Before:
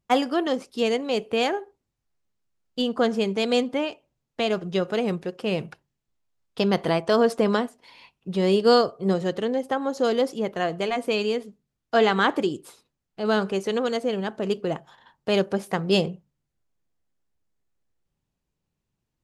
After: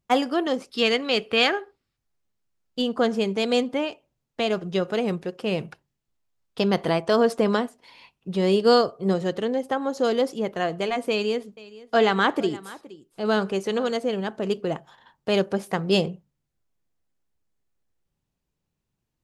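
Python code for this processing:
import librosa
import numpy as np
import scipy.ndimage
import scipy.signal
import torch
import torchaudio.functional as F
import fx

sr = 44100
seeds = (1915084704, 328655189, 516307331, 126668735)

y = fx.spec_box(x, sr, start_s=0.71, length_s=1.26, low_hz=1100.0, high_hz=5500.0, gain_db=8)
y = fx.echo_single(y, sr, ms=469, db=-19.5, at=(11.1, 13.91))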